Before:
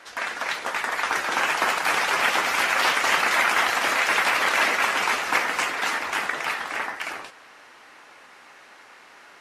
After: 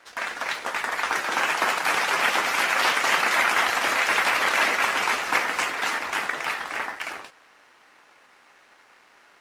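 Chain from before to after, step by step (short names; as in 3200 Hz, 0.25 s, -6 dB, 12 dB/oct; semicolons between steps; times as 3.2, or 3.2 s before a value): G.711 law mismatch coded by A; 1.13–3.37 HPF 100 Hz 24 dB/oct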